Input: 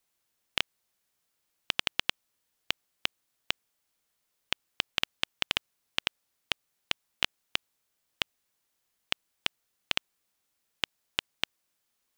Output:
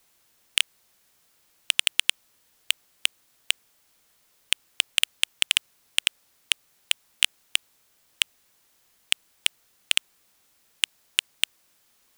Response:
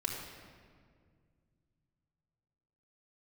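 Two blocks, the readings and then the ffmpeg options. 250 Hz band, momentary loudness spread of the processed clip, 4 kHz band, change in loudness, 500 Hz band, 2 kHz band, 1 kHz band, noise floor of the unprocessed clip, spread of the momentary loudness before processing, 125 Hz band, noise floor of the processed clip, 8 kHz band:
below −15 dB, 5 LU, +8.0 dB, +8.0 dB, below −10 dB, +6.0 dB, −4.5 dB, −79 dBFS, 5 LU, below −15 dB, −65 dBFS, +17.0 dB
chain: -af "aeval=exprs='0.596*sin(PI/2*2.24*val(0)/0.596)':channel_layout=same,volume=3dB"

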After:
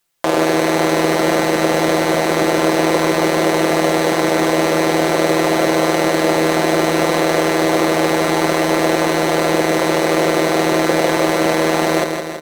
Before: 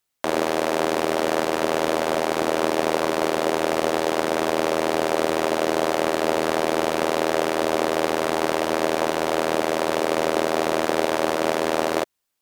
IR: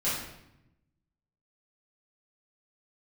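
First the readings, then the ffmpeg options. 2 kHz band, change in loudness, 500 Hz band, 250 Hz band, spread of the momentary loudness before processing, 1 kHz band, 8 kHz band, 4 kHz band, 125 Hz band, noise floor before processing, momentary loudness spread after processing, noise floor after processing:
+8.0 dB, +7.0 dB, +6.0 dB, +10.0 dB, 1 LU, +5.5 dB, +8.0 dB, +7.0 dB, +13.0 dB, −28 dBFS, 1 LU, −19 dBFS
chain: -af "aecho=1:1:5.9:0.74,acontrast=51,aecho=1:1:163|326|489|652|815|978|1141|1304:0.501|0.296|0.174|0.103|0.0607|0.0358|0.0211|0.0125"

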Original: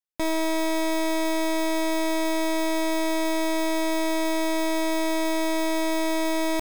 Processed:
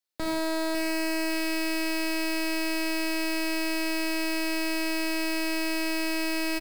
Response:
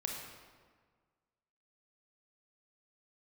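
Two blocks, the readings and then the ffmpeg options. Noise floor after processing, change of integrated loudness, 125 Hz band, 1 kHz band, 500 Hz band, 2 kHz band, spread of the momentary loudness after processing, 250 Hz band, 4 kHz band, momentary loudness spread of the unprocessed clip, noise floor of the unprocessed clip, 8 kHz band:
−28 dBFS, −3.0 dB, can't be measured, −8.0 dB, −7.0 dB, +1.5 dB, 0 LU, −3.5 dB, 0.0 dB, 0 LU, −24 dBFS, −2.5 dB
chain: -filter_complex "[0:a]acrossover=split=180[link_01][link_02];[link_01]acrusher=bits=6:mix=0:aa=0.000001[link_03];[link_02]equalizer=frequency=4300:width_type=o:width=0.45:gain=6.5[link_04];[link_03][link_04]amix=inputs=2:normalize=0,aecho=1:1:551|1102|1653:0.282|0.0817|0.0237,asoftclip=type=tanh:threshold=-29dB,equalizer=frequency=1100:width_type=o:width=0.6:gain=-3[link_05];[1:a]atrim=start_sample=2205,afade=type=out:start_time=0.24:duration=0.01,atrim=end_sample=11025[link_06];[link_05][link_06]afir=irnorm=-1:irlink=0,volume=5.5dB"

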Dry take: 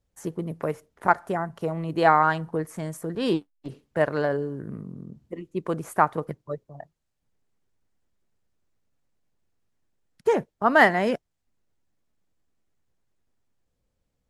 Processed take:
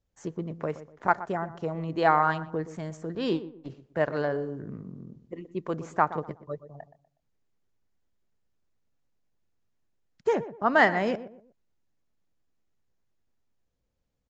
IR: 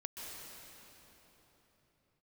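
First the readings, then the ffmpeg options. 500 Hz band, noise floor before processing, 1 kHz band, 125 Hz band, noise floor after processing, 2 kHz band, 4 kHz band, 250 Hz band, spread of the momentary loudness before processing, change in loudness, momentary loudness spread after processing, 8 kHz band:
−3.5 dB, −78 dBFS, −3.5 dB, −3.5 dB, −78 dBFS, −3.5 dB, −3.5 dB, −3.5 dB, 18 LU, −3.5 dB, 20 LU, can't be measured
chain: -filter_complex "[0:a]asplit=2[link_01][link_02];[link_02]adelay=122,lowpass=frequency=1200:poles=1,volume=-13dB,asplit=2[link_03][link_04];[link_04]adelay=122,lowpass=frequency=1200:poles=1,volume=0.34,asplit=2[link_05][link_06];[link_06]adelay=122,lowpass=frequency=1200:poles=1,volume=0.34[link_07];[link_03][link_05][link_07]amix=inputs=3:normalize=0[link_08];[link_01][link_08]amix=inputs=2:normalize=0,aresample=16000,aresample=44100,volume=-3.5dB"

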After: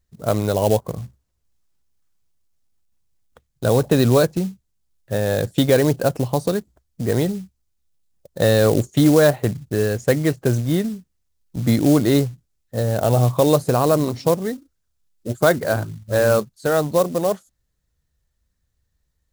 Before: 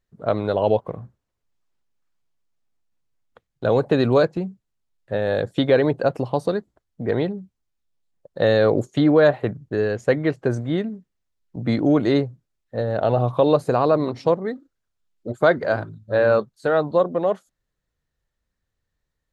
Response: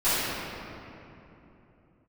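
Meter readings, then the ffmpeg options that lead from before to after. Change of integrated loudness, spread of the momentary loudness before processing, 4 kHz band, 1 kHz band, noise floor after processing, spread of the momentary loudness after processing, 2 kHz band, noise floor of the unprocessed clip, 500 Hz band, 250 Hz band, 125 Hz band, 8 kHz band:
+1.5 dB, 13 LU, +4.5 dB, 0.0 dB, −72 dBFS, 12 LU, +0.5 dB, −79 dBFS, +0.5 dB, +2.5 dB, +6.0 dB, can't be measured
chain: -af "equalizer=frequency=65:width=3:gain=8.5,acrusher=bits=5:mode=log:mix=0:aa=0.000001,bass=frequency=250:gain=6,treble=frequency=4000:gain=8"

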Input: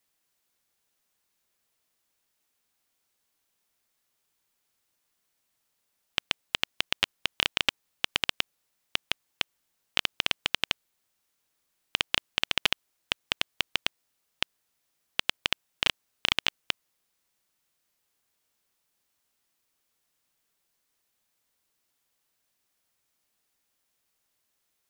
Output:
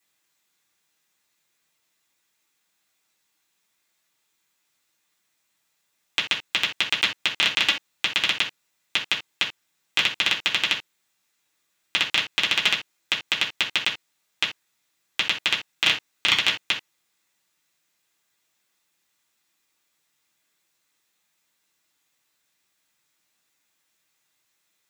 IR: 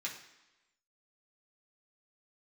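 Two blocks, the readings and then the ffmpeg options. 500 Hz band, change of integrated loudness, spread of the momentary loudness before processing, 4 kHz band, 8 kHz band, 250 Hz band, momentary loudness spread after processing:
+2.0 dB, +6.5 dB, 8 LU, +6.0 dB, +5.5 dB, +3.5 dB, 8 LU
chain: -filter_complex "[1:a]atrim=start_sample=2205,atrim=end_sample=3969[link_01];[0:a][link_01]afir=irnorm=-1:irlink=0,volume=5.5dB"

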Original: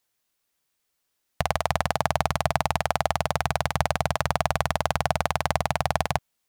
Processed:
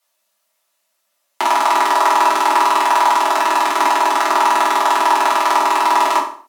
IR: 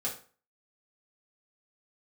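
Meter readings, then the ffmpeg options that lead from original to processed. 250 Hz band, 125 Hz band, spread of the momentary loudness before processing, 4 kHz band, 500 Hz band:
+5.5 dB, below −30 dB, 1 LU, +9.0 dB, +5.5 dB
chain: -filter_complex "[0:a]afreqshift=200,lowshelf=frequency=510:width_type=q:width=3:gain=-6[link_01];[1:a]atrim=start_sample=2205,afade=type=out:start_time=0.29:duration=0.01,atrim=end_sample=13230,asetrate=34839,aresample=44100[link_02];[link_01][link_02]afir=irnorm=-1:irlink=0,volume=4.5dB"

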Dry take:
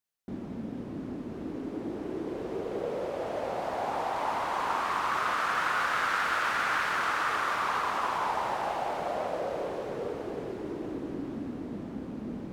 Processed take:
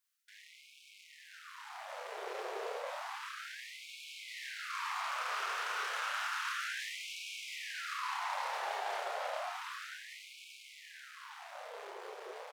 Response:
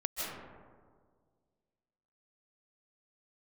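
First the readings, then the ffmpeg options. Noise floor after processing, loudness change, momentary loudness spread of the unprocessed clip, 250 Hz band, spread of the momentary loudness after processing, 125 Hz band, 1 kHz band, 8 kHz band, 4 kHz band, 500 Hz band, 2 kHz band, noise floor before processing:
−59 dBFS, −8.5 dB, 11 LU, below −30 dB, 15 LU, below −40 dB, −10.0 dB, −1.5 dB, −2.0 dB, −12.0 dB, −7.5 dB, −40 dBFS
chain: -filter_complex "[0:a]equalizer=frequency=340:width_type=o:width=1.7:gain=-12,areverse,acompressor=threshold=-41dB:ratio=8,areverse,aeval=exprs='0.0251*(cos(1*acos(clip(val(0)/0.0251,-1,1)))-cos(1*PI/2))+0.00501*(cos(6*acos(clip(val(0)/0.0251,-1,1)))-cos(6*PI/2))':channel_layout=same,asplit=2[link_01][link_02];[link_02]adelay=30,volume=-4dB[link_03];[link_01][link_03]amix=inputs=2:normalize=0,afftfilt=real='re*gte(b*sr/1024,350*pow(2200/350,0.5+0.5*sin(2*PI*0.31*pts/sr)))':imag='im*gte(b*sr/1024,350*pow(2200/350,0.5+0.5*sin(2*PI*0.31*pts/sr)))':win_size=1024:overlap=0.75,volume=4dB"

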